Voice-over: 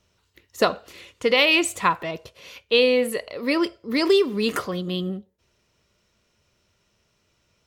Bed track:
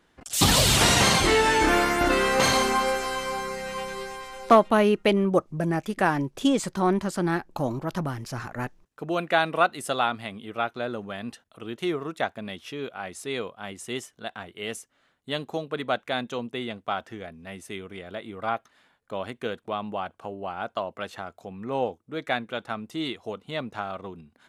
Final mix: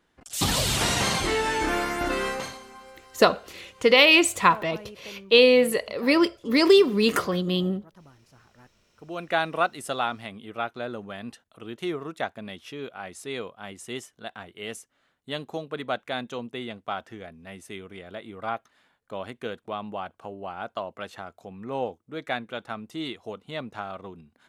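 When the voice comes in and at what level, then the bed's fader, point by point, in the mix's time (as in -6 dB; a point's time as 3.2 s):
2.60 s, +2.0 dB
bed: 2.29 s -5 dB
2.6 s -23 dB
8.64 s -23 dB
9.33 s -2.5 dB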